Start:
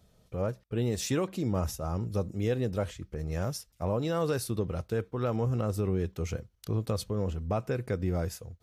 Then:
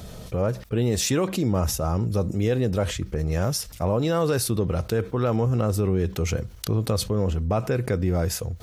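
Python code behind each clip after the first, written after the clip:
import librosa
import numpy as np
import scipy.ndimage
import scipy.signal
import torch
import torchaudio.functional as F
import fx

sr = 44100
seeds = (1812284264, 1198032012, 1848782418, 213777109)

y = fx.env_flatten(x, sr, amount_pct=50)
y = y * librosa.db_to_amplitude(5.0)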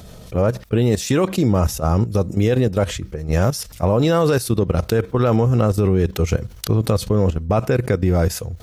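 y = fx.level_steps(x, sr, step_db=12)
y = y * librosa.db_to_amplitude(8.5)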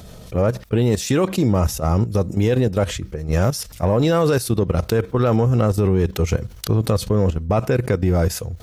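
y = 10.0 ** (-5.5 / 20.0) * np.tanh(x / 10.0 ** (-5.5 / 20.0))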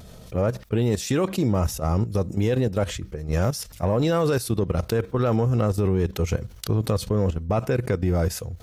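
y = fx.vibrato(x, sr, rate_hz=0.84, depth_cents=20.0)
y = y * librosa.db_to_amplitude(-4.5)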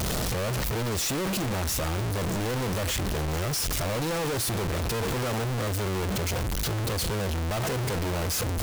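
y = np.sign(x) * np.sqrt(np.mean(np.square(x)))
y = y * librosa.db_to_amplitude(-4.5)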